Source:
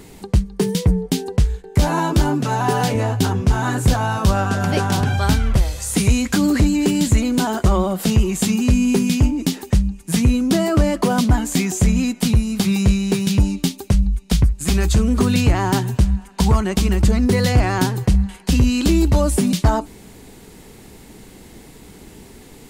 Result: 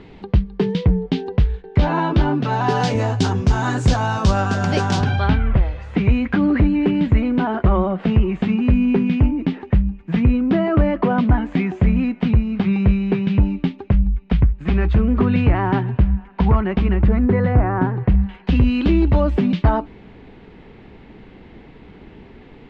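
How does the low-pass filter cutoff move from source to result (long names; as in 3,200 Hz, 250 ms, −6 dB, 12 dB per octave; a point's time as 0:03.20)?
low-pass filter 24 dB per octave
0:02.33 3,500 Hz
0:02.94 6,600 Hz
0:04.96 6,600 Hz
0:05.40 2,500 Hz
0:16.88 2,500 Hz
0:17.75 1,500 Hz
0:18.28 3,000 Hz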